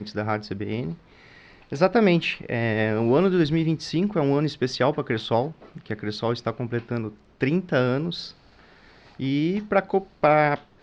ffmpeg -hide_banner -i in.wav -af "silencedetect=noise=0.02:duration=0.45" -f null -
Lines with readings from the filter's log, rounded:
silence_start: 0.94
silence_end: 1.72 | silence_duration: 0.78
silence_start: 8.30
silence_end: 9.19 | silence_duration: 0.89